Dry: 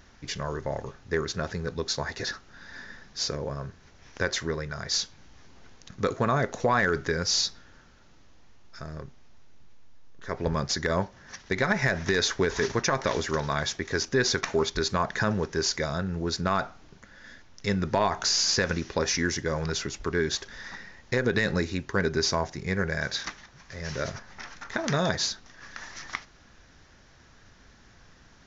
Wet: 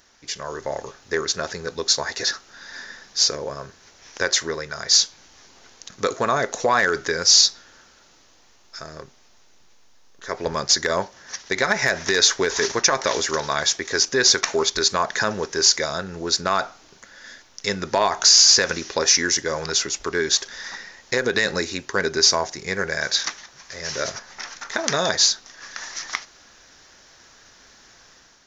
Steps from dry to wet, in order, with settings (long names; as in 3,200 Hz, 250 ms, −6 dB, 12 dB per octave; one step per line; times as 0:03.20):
automatic gain control gain up to 7 dB
bass and treble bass −13 dB, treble +9 dB
level −1.5 dB